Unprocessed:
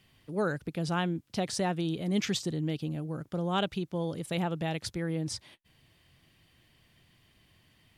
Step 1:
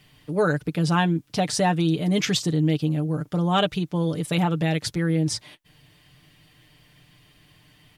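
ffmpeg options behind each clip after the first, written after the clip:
ffmpeg -i in.wav -af "aecho=1:1:6.7:0.61,volume=7dB" out.wav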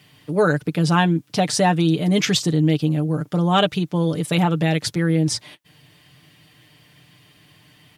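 ffmpeg -i in.wav -af "highpass=95,volume=4dB" out.wav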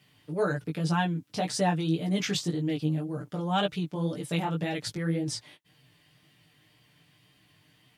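ffmpeg -i in.wav -af "flanger=delay=15:depth=4.8:speed=1.9,volume=-7dB" out.wav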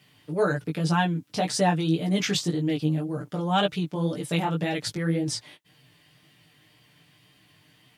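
ffmpeg -i in.wav -af "lowshelf=frequency=85:gain=-5,volume=4dB" out.wav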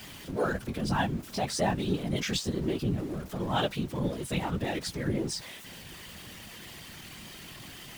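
ffmpeg -i in.wav -af "aeval=exprs='val(0)+0.5*0.0188*sgn(val(0))':channel_layout=same,afftfilt=real='hypot(re,im)*cos(2*PI*random(0))':imag='hypot(re,im)*sin(2*PI*random(1))':win_size=512:overlap=0.75" out.wav

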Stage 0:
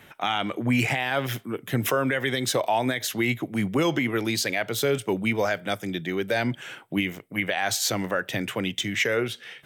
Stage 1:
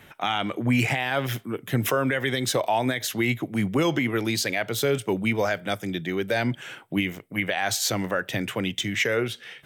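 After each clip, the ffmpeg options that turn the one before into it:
ffmpeg -i in.wav -af "lowshelf=frequency=85:gain=6" out.wav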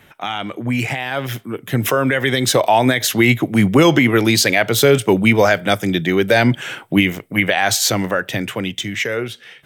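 ffmpeg -i in.wav -af "dynaudnorm=framelen=390:gausssize=11:maxgain=11.5dB,volume=1.5dB" out.wav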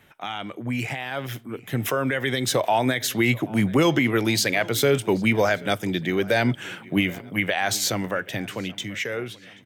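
ffmpeg -i in.wav -filter_complex "[0:a]asplit=2[link_01][link_02];[link_02]adelay=782,lowpass=frequency=4500:poles=1,volume=-21.5dB,asplit=2[link_03][link_04];[link_04]adelay=782,lowpass=frequency=4500:poles=1,volume=0.5,asplit=2[link_05][link_06];[link_06]adelay=782,lowpass=frequency=4500:poles=1,volume=0.5,asplit=2[link_07][link_08];[link_08]adelay=782,lowpass=frequency=4500:poles=1,volume=0.5[link_09];[link_01][link_03][link_05][link_07][link_09]amix=inputs=5:normalize=0,volume=-7.5dB" out.wav

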